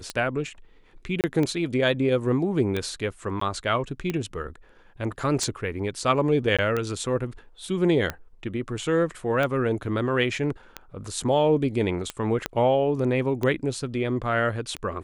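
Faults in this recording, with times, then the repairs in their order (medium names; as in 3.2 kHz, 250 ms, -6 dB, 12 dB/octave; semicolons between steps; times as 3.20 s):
tick 45 rpm -14 dBFS
1.21–1.24 s: dropout 28 ms
3.40–3.41 s: dropout 14 ms
6.57–6.59 s: dropout 16 ms
12.46 s: pop -10 dBFS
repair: de-click; interpolate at 1.21 s, 28 ms; interpolate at 3.40 s, 14 ms; interpolate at 6.57 s, 16 ms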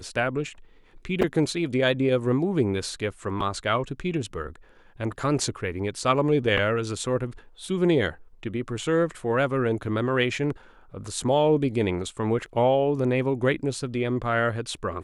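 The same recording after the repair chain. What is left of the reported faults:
12.46 s: pop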